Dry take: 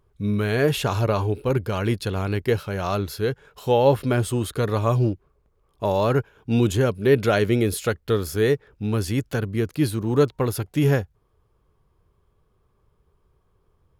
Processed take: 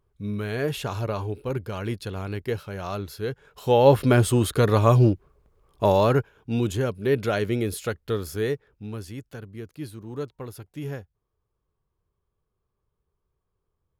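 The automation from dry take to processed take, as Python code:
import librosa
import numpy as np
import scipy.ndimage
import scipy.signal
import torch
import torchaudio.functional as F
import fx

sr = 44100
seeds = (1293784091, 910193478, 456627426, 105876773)

y = fx.gain(x, sr, db=fx.line((3.18, -6.5), (4.03, 3.5), (5.88, 3.5), (6.5, -5.0), (8.35, -5.0), (9.22, -14.0)))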